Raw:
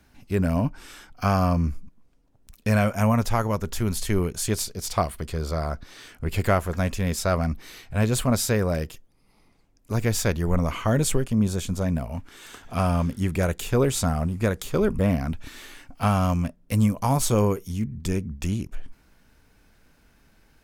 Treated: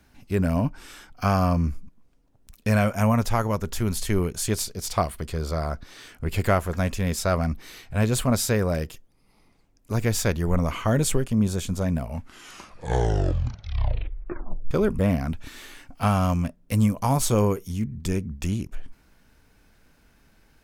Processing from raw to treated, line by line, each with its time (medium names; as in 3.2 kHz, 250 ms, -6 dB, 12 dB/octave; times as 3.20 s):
12.06 s: tape stop 2.65 s